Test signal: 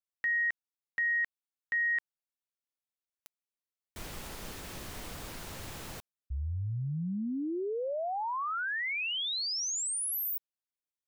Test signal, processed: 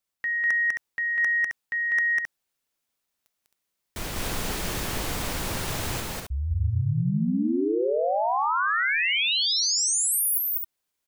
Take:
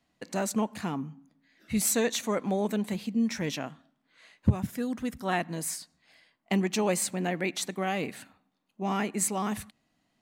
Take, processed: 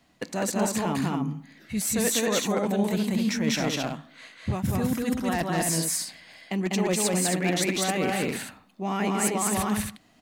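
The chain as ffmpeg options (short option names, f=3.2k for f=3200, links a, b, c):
-af "areverse,acompressor=threshold=-36dB:ratio=16:attack=33:release=170:knee=6:detection=rms,areverse,aeval=exprs='0.0376*(abs(mod(val(0)/0.0376+3,4)-2)-1)':c=same,aecho=1:1:198.3|265.3:0.891|0.562,acontrast=53,volume=4.5dB"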